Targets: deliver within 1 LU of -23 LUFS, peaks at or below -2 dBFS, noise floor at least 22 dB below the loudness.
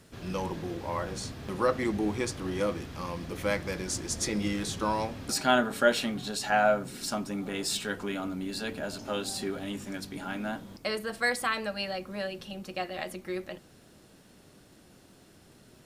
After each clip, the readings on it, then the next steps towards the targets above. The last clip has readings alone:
ticks 28/s; loudness -31.5 LUFS; peak -9.0 dBFS; loudness target -23.0 LUFS
-> de-click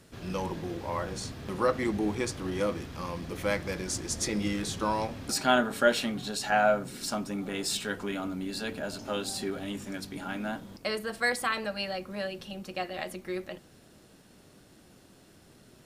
ticks 0.063/s; loudness -31.5 LUFS; peak -9.0 dBFS; loudness target -23.0 LUFS
-> gain +8.5 dB; limiter -2 dBFS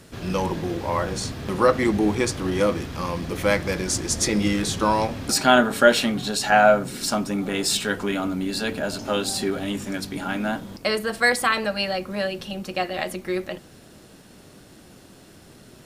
loudness -23.0 LUFS; peak -2.0 dBFS; noise floor -49 dBFS

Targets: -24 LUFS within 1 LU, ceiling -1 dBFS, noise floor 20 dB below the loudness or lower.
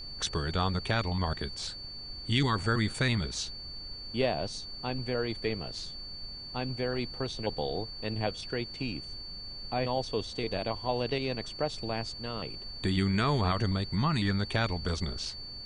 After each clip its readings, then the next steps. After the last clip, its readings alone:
steady tone 4500 Hz; tone level -41 dBFS; noise floor -43 dBFS; noise floor target -53 dBFS; loudness -32.5 LUFS; peak -13.5 dBFS; loudness target -24.0 LUFS
-> notch 4500 Hz, Q 30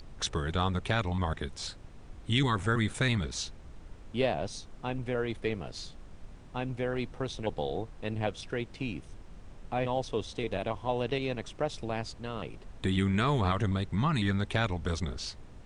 steady tone none; noise floor -50 dBFS; noise floor target -53 dBFS
-> noise print and reduce 6 dB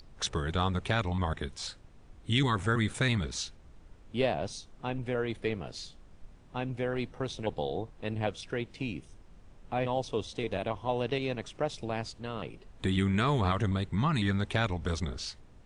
noise floor -55 dBFS; loudness -32.5 LUFS; peak -14.0 dBFS; loudness target -24.0 LUFS
-> gain +8.5 dB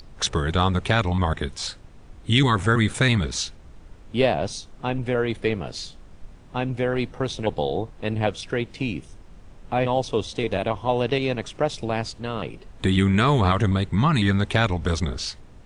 loudness -24.0 LUFS; peak -5.5 dBFS; noise floor -46 dBFS

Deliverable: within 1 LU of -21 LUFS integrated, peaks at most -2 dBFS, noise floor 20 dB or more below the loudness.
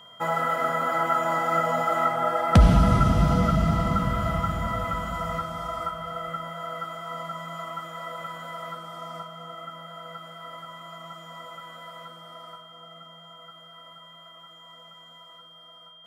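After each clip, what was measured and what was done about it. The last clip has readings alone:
steady tone 3200 Hz; tone level -48 dBFS; loudness -25.0 LUFS; peak -5.5 dBFS; loudness target -21.0 LUFS
-> notch 3200 Hz, Q 30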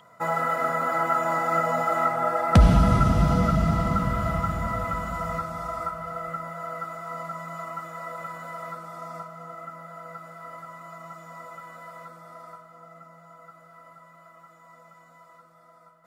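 steady tone none; loudness -25.0 LUFS; peak -5.0 dBFS; loudness target -21.0 LUFS
-> gain +4 dB; limiter -2 dBFS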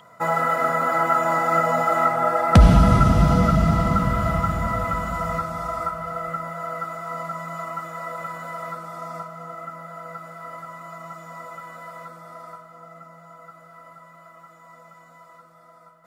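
loudness -21.0 LUFS; peak -2.0 dBFS; noise floor -50 dBFS

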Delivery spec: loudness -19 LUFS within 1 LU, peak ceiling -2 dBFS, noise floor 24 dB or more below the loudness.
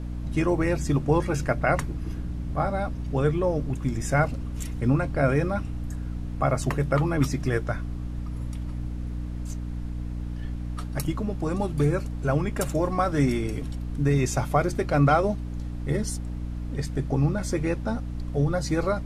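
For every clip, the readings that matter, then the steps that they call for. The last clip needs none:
hum 60 Hz; harmonics up to 300 Hz; hum level -30 dBFS; noise floor -33 dBFS; noise floor target -51 dBFS; loudness -27.0 LUFS; peak -8.0 dBFS; loudness target -19.0 LUFS
-> notches 60/120/180/240/300 Hz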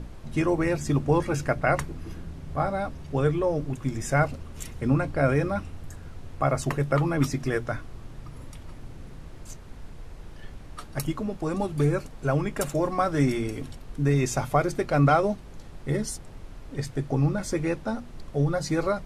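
hum none; noise floor -43 dBFS; noise floor target -51 dBFS
-> noise print and reduce 8 dB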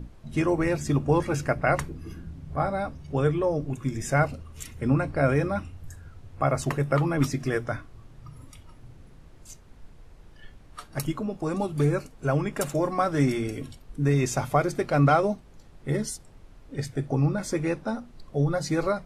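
noise floor -51 dBFS; loudness -26.5 LUFS; peak -7.5 dBFS; loudness target -19.0 LUFS
-> gain +7.5 dB; limiter -2 dBFS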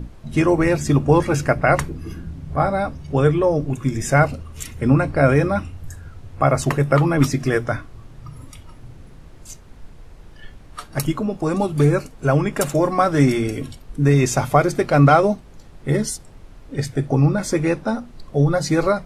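loudness -19.0 LUFS; peak -2.0 dBFS; noise floor -43 dBFS

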